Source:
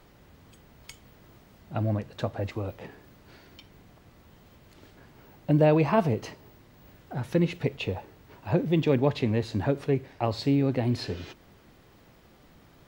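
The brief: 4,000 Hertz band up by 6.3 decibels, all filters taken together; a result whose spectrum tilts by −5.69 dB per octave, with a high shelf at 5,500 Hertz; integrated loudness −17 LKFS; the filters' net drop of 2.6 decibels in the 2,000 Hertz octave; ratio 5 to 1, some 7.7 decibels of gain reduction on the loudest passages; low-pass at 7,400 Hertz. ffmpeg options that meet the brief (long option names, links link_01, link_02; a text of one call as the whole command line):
ffmpeg -i in.wav -af "lowpass=7400,equalizer=frequency=2000:width_type=o:gain=-7.5,equalizer=frequency=4000:width_type=o:gain=6.5,highshelf=frequency=5500:gain=8.5,acompressor=threshold=-26dB:ratio=5,volume=15.5dB" out.wav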